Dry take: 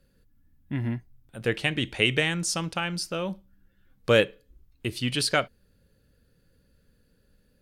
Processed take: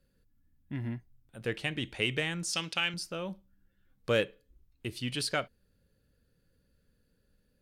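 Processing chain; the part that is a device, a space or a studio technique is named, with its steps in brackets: 2.53–2.94 weighting filter D; parallel distortion (in parallel at -14 dB: hard clip -22.5 dBFS, distortion -7 dB); on the sum: gain -8.5 dB

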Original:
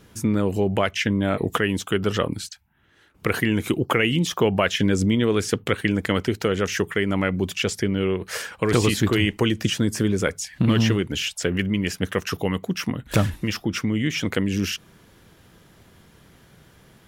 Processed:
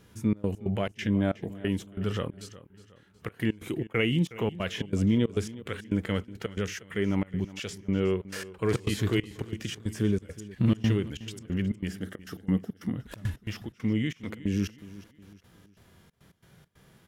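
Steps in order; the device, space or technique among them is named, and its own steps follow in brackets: 11.88–12.96 thirty-one-band EQ 200 Hz +7 dB, 315 Hz +8 dB, 1000 Hz -8 dB, 2500 Hz -12 dB, 4000 Hz -3 dB, 6300 Hz -5 dB; harmonic-percussive split percussive -12 dB; trance gate with a delay (step gate "xxx.x.xx." 137 bpm -24 dB; feedback echo 0.365 s, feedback 41%, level -17.5 dB); gain -2.5 dB

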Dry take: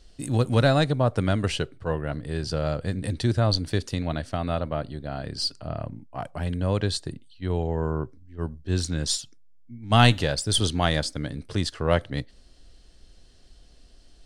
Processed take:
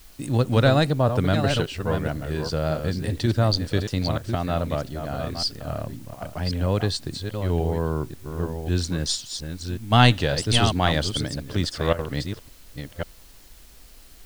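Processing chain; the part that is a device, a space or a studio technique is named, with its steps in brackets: reverse delay 0.543 s, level -7 dB; worn cassette (LPF 7800 Hz; wow and flutter; level dips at 4.18/6.15/11.93, 58 ms -14 dB; white noise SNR 29 dB); gain +1.5 dB

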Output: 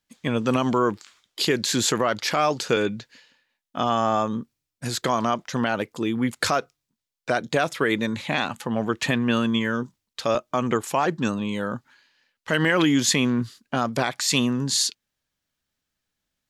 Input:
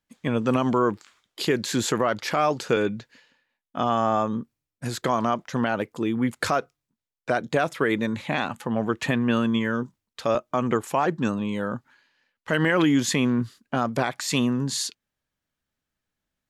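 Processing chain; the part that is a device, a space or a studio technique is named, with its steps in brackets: presence and air boost (bell 4700 Hz +6 dB 1.9 oct; high shelf 10000 Hz +4.5 dB)

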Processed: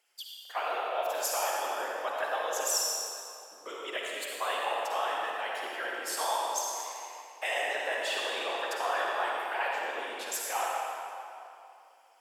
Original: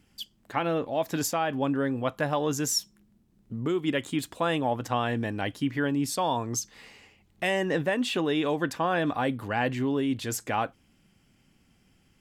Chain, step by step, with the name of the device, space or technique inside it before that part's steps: high shelf 6200 Hz +5 dB; whispering ghost (whisperiser; HPF 590 Hz 24 dB/oct; reverb RT60 2.8 s, pre-delay 45 ms, DRR -3 dB); gain -5.5 dB

